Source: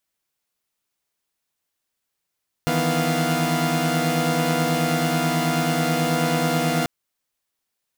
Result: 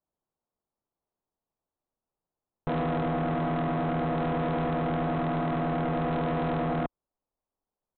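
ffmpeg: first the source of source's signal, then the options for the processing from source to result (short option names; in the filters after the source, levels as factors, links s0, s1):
-f lavfi -i "aevalsrc='0.075*((2*mod(155.56*t,1)-1)+(2*mod(164.81*t,1)-1)+(2*mod(246.94*t,1)-1)+(2*mod(698.46*t,1)-1))':d=4.19:s=44100"
-af "lowpass=f=1000:w=0.5412,lowpass=f=1000:w=1.3066,aresample=8000,asoftclip=type=hard:threshold=0.0531,aresample=44100,asubboost=boost=2.5:cutoff=53"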